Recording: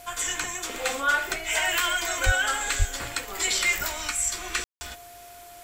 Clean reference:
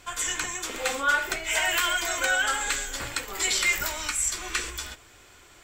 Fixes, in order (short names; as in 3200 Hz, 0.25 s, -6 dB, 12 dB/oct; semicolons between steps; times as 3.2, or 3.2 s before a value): notch 700 Hz, Q 30; 2.25–2.37 HPF 140 Hz 24 dB/oct; 2.78–2.9 HPF 140 Hz 24 dB/oct; room tone fill 4.64–4.81; noise print and reduce 7 dB